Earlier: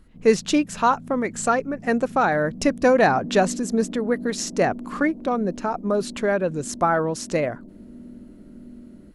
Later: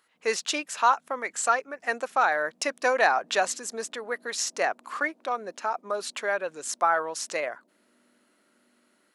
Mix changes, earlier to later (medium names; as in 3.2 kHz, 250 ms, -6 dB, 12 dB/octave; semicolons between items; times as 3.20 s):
background -6.5 dB; master: add high-pass 810 Hz 12 dB/octave